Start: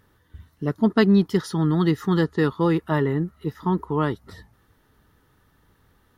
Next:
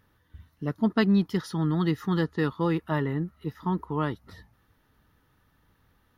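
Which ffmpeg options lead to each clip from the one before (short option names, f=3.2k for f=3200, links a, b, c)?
-af "equalizer=f=400:t=o:w=0.33:g=-5,equalizer=f=2.5k:t=o:w=0.33:g=3,equalizer=f=8k:t=o:w=0.33:g=-8,volume=-4.5dB"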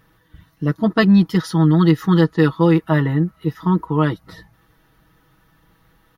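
-af "aecho=1:1:6.2:0.73,volume=7.5dB"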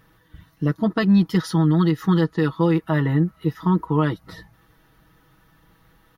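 -af "alimiter=limit=-9.5dB:level=0:latency=1:release=244"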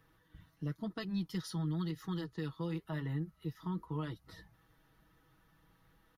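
-filter_complex "[0:a]aresample=32000,aresample=44100,flanger=delay=2.4:depth=5.3:regen=-72:speed=0.95:shape=sinusoidal,acrossover=split=120|3000[a][b][c];[b]acompressor=threshold=-48dB:ratio=1.5[d];[a][d][c]amix=inputs=3:normalize=0,volume=-7dB"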